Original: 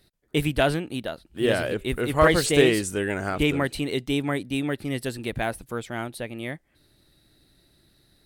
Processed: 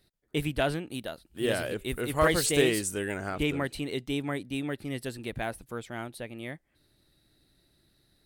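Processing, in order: 0.91–3.17 high shelf 6200 Hz +9 dB; gain -6 dB

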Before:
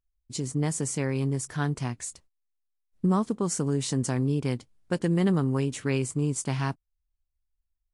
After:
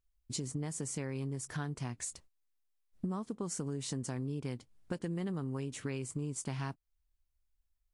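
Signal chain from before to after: compressor 5:1, threshold -37 dBFS, peak gain reduction 15.5 dB; gain +1 dB

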